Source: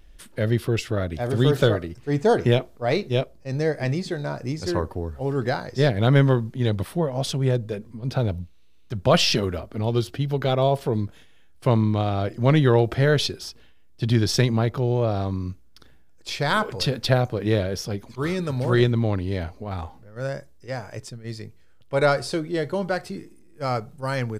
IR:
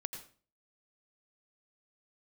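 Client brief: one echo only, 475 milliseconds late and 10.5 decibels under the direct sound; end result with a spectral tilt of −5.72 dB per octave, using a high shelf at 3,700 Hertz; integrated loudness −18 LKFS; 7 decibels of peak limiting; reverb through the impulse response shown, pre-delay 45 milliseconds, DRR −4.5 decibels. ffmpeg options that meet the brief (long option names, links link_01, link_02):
-filter_complex "[0:a]highshelf=frequency=3700:gain=4.5,alimiter=limit=-11.5dB:level=0:latency=1,aecho=1:1:475:0.299,asplit=2[link_01][link_02];[1:a]atrim=start_sample=2205,adelay=45[link_03];[link_02][link_03]afir=irnorm=-1:irlink=0,volume=5.5dB[link_04];[link_01][link_04]amix=inputs=2:normalize=0,volume=0.5dB"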